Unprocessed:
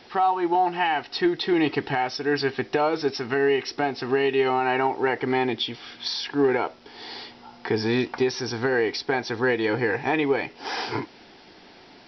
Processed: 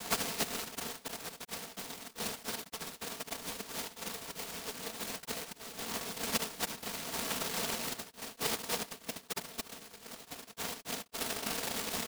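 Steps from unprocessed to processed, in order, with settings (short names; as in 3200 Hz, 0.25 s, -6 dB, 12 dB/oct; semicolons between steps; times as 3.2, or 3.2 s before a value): bin magnitudes rounded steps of 15 dB; flipped gate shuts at -20 dBFS, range -32 dB; fuzz box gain 51 dB, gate -52 dBFS; loudspeakers at several distances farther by 25 m -7 dB, 96 m -1 dB; band-pass sweep 1200 Hz -> 210 Hz, 4.84–6.42; noise vocoder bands 1; LPF 2000 Hz 6 dB/oct; comb 4.4 ms, depth 84%; noise-modulated delay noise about 3100 Hz, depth 0.17 ms; gain -8 dB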